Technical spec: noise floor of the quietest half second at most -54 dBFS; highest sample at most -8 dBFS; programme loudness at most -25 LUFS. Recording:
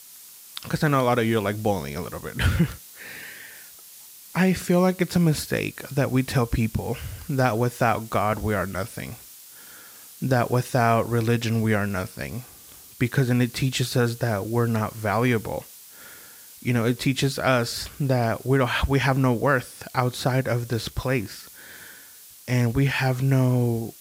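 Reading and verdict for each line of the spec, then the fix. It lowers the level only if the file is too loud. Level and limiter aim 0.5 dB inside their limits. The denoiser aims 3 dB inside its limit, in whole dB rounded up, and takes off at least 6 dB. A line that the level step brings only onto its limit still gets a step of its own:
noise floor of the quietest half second -47 dBFS: fail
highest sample -6.0 dBFS: fail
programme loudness -24.0 LUFS: fail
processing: noise reduction 9 dB, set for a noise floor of -47 dBFS; trim -1.5 dB; peak limiter -8.5 dBFS

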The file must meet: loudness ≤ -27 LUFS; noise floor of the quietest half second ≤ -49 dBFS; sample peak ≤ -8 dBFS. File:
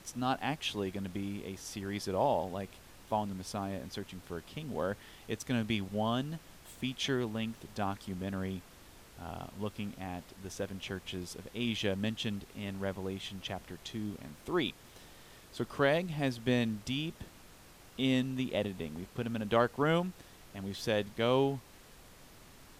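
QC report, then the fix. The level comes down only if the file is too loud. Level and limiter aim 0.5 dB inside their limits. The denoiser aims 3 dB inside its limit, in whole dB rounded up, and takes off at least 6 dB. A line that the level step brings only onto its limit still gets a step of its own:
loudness -35.5 LUFS: pass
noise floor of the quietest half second -56 dBFS: pass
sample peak -14.0 dBFS: pass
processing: none needed

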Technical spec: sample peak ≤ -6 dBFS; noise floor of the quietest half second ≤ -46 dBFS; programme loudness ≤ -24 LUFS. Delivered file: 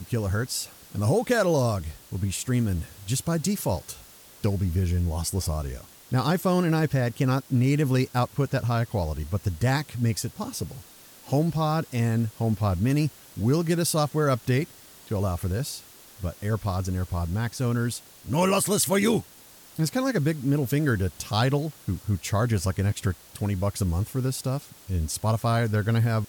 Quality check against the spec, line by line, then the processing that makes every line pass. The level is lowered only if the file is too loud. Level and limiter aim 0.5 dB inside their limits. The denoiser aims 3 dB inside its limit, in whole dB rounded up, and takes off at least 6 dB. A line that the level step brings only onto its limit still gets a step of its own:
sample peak -10.0 dBFS: pass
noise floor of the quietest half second -50 dBFS: pass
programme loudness -26.0 LUFS: pass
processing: none needed

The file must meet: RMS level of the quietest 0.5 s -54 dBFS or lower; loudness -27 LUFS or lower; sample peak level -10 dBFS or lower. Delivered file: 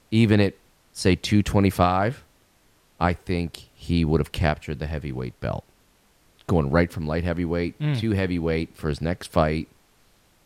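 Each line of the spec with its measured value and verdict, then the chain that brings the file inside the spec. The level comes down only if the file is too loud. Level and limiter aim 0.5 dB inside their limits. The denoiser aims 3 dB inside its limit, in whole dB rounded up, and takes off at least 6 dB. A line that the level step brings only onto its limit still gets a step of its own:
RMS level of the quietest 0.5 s -61 dBFS: pass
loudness -24.0 LUFS: fail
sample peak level -5.5 dBFS: fail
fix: trim -3.5 dB; peak limiter -10.5 dBFS

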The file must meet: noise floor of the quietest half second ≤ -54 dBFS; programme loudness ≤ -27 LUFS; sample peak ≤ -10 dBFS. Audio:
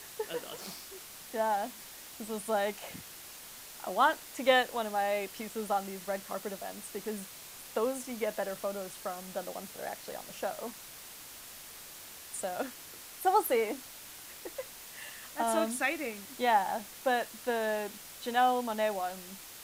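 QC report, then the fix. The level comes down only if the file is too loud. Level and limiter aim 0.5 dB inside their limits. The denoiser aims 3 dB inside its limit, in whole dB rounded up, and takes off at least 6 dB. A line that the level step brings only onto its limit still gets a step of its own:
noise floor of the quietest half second -48 dBFS: fail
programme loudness -33.5 LUFS: pass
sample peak -12.5 dBFS: pass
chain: noise reduction 9 dB, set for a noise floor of -48 dBFS

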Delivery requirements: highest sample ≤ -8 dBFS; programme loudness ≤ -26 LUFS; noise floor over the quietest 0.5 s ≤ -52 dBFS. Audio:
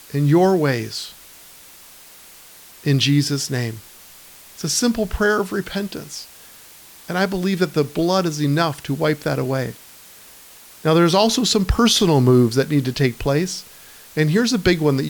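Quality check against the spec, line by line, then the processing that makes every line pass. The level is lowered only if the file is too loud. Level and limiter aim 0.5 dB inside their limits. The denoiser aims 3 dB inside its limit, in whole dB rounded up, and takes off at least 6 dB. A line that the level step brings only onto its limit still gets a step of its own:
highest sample -5.5 dBFS: fail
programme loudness -19.0 LUFS: fail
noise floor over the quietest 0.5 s -44 dBFS: fail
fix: noise reduction 6 dB, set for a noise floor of -44 dBFS; trim -7.5 dB

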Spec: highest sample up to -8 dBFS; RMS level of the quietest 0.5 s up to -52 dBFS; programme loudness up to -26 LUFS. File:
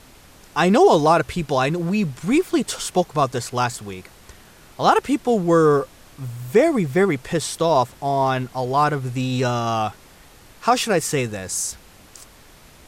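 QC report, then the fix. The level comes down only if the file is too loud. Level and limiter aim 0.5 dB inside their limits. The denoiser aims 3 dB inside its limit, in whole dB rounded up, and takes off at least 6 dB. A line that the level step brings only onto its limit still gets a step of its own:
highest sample -5.0 dBFS: fail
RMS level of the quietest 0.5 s -47 dBFS: fail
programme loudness -20.0 LUFS: fail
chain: trim -6.5 dB

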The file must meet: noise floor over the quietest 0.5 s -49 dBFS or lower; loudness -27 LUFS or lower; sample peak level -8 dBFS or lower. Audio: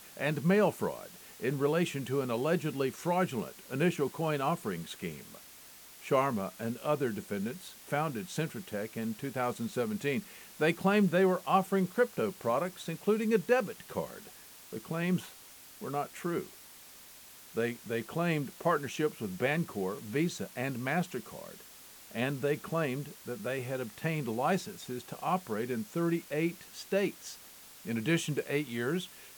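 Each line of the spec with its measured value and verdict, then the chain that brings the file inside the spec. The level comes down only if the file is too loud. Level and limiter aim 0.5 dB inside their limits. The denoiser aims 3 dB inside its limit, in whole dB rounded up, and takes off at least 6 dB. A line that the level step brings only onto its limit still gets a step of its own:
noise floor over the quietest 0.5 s -53 dBFS: pass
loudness -33.0 LUFS: pass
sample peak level -14.0 dBFS: pass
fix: none needed

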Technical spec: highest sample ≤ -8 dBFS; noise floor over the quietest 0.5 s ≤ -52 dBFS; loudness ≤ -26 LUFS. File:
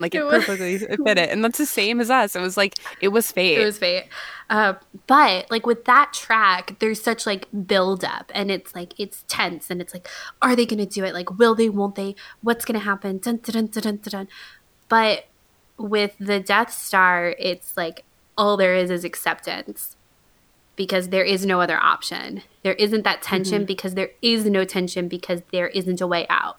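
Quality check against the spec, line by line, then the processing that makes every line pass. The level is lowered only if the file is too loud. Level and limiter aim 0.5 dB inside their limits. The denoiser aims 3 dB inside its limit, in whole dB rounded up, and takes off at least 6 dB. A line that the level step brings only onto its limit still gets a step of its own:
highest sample -3.0 dBFS: fail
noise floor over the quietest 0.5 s -59 dBFS: pass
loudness -20.5 LUFS: fail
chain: trim -6 dB

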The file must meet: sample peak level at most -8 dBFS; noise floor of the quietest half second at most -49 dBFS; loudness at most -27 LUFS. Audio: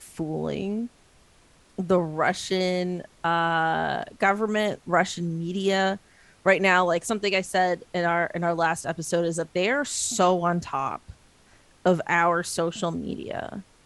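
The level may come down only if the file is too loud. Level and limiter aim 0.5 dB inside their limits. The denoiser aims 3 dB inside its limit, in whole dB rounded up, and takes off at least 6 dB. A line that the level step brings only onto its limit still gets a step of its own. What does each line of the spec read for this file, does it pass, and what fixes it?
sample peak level -6.5 dBFS: fail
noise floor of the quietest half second -57 dBFS: pass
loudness -25.0 LUFS: fail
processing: trim -2.5 dB

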